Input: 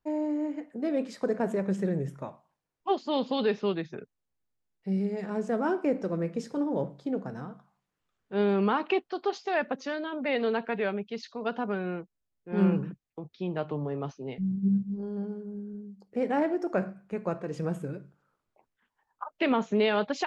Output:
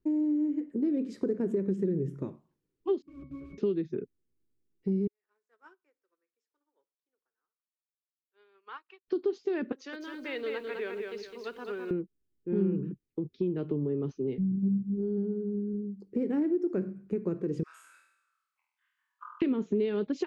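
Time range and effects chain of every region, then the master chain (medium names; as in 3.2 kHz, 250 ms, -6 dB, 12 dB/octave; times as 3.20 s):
3.02–3.58 s: bass shelf 110 Hz +9.5 dB + integer overflow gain 28 dB + pitch-class resonator C#, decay 0.27 s
5.07–9.08 s: ladder high-pass 870 Hz, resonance 30% + upward expansion 2.5:1, over -53 dBFS
9.72–11.91 s: high-pass 820 Hz + bit-crushed delay 208 ms, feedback 35%, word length 10-bit, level -4 dB
17.63–19.42 s: elliptic high-pass 1.1 kHz, stop band 60 dB + flutter echo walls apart 4.2 m, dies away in 0.82 s
whole clip: resonant low shelf 510 Hz +10.5 dB, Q 3; compression 3:1, threshold -23 dBFS; trim -5.5 dB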